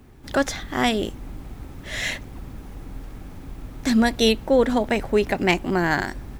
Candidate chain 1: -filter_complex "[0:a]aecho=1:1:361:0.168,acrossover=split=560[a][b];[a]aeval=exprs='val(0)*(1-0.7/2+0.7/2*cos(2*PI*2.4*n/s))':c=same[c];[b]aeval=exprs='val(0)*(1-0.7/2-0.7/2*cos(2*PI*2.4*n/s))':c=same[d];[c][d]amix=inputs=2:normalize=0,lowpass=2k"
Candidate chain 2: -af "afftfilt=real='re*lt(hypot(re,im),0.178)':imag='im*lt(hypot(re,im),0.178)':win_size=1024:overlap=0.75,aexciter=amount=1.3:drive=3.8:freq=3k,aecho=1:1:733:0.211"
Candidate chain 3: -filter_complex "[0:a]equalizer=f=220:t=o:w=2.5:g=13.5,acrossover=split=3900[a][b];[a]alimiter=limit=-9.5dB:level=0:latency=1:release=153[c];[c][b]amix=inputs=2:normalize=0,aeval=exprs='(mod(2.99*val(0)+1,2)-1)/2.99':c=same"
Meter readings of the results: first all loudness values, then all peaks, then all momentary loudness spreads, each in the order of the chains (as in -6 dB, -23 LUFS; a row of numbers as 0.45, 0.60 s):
-26.5, -31.5, -20.0 LUFS; -9.0, -11.0, -9.5 dBFS; 20, 13, 14 LU